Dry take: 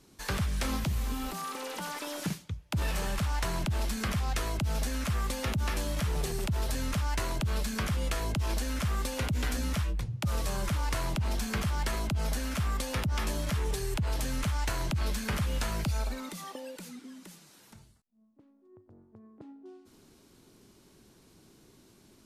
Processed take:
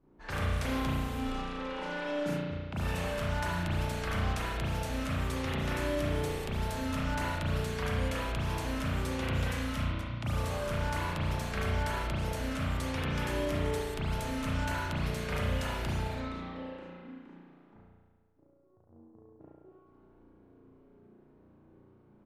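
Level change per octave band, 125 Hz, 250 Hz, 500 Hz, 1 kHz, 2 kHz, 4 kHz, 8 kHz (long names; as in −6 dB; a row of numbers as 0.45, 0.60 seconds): −1.0, +0.5, +3.0, +1.0, +1.0, −2.5, −8.0 decibels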